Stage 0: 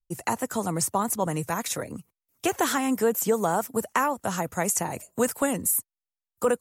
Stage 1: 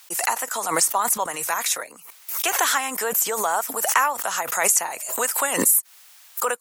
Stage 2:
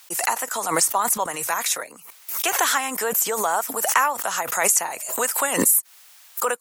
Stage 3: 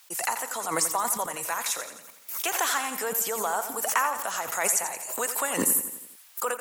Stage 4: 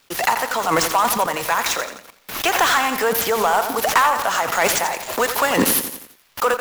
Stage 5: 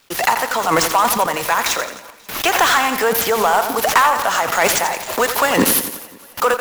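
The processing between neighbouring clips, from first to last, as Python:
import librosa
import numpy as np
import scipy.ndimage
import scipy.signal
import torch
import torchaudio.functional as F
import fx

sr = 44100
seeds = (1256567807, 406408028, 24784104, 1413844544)

y1 = scipy.signal.sosfilt(scipy.signal.butter(2, 950.0, 'highpass', fs=sr, output='sos'), x)
y1 = fx.pre_swell(y1, sr, db_per_s=55.0)
y1 = y1 * librosa.db_to_amplitude(7.0)
y2 = fx.low_shelf(y1, sr, hz=320.0, db=4.0)
y3 = fx.echo_feedback(y2, sr, ms=86, feedback_pct=54, wet_db=-10.5)
y3 = y3 * librosa.db_to_amplitude(-6.0)
y4 = scipy.signal.medfilt(y3, 5)
y4 = fx.leveller(y4, sr, passes=2)
y4 = y4 * librosa.db_to_amplitude(5.0)
y5 = fx.echo_feedback(y4, sr, ms=268, feedback_pct=57, wet_db=-23.5)
y5 = y5 * librosa.db_to_amplitude(2.5)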